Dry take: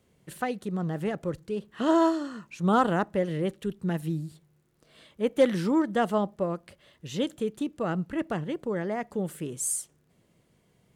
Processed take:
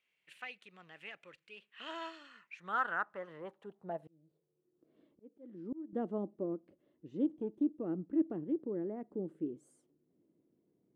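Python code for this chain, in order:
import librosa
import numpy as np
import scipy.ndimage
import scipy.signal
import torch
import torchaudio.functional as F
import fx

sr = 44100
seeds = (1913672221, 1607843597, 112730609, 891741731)

y = fx.lower_of_two(x, sr, delay_ms=0.35, at=(7.24, 7.8))
y = fx.filter_sweep_bandpass(y, sr, from_hz=2500.0, to_hz=310.0, start_s=2.27, end_s=4.9, q=4.1)
y = fx.auto_swell(y, sr, attack_ms=783.0, at=(3.99, 5.93))
y = y * 10.0 ** (1.0 / 20.0)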